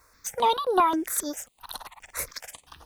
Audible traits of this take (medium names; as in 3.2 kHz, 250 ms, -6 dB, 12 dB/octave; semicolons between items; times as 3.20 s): a quantiser's noise floor 12-bit, dither triangular; chopped level 1.5 Hz, depth 60%, duty 85%; notches that jump at a steady rate 7.5 Hz 820–7500 Hz